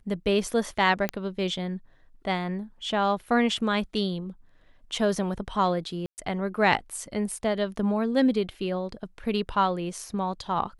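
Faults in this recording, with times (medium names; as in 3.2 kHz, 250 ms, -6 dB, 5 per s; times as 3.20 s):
1.09 s: pop -12 dBFS
6.06–6.18 s: dropout 119 ms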